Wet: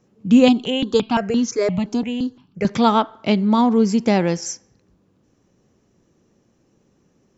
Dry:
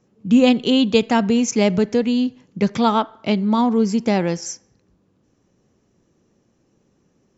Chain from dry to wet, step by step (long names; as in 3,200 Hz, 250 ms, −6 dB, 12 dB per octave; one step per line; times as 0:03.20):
0:00.48–0:02.65: step-sequenced phaser 5.8 Hz 510–2,400 Hz
level +1.5 dB